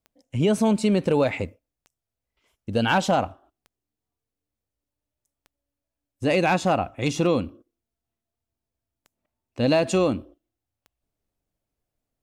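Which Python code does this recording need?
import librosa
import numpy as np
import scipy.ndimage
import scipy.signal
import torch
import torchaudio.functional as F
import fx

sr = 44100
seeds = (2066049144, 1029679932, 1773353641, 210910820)

y = fx.fix_declip(x, sr, threshold_db=-11.5)
y = fx.fix_declick_ar(y, sr, threshold=10.0)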